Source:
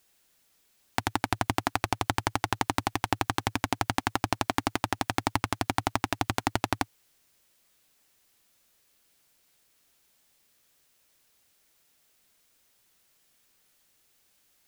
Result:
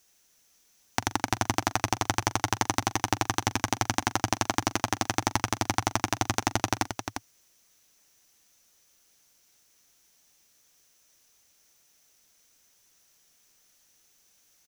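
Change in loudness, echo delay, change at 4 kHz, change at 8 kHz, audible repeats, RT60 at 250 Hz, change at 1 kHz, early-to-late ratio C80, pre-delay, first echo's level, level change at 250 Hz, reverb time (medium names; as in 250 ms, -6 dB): +1.5 dB, 42 ms, +2.5 dB, +8.0 dB, 2, no reverb, +1.0 dB, no reverb, no reverb, -18.0 dB, +0.5 dB, no reverb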